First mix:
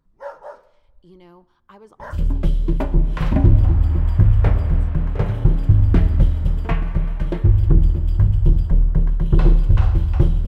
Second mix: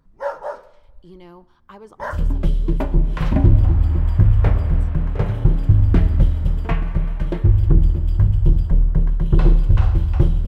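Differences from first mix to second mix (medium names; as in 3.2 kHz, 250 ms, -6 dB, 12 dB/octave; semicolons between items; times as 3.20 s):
speech +4.0 dB; first sound +8.0 dB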